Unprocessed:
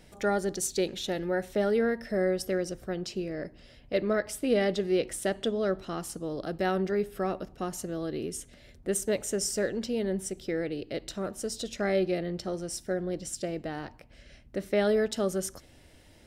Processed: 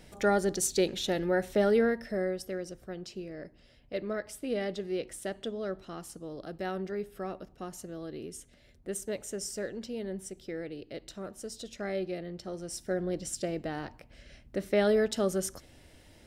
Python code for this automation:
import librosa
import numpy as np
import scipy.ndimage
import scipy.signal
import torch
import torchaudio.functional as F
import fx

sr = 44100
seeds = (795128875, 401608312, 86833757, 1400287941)

y = fx.gain(x, sr, db=fx.line((1.77, 1.5), (2.44, -7.0), (12.39, -7.0), (13.01, 0.0)))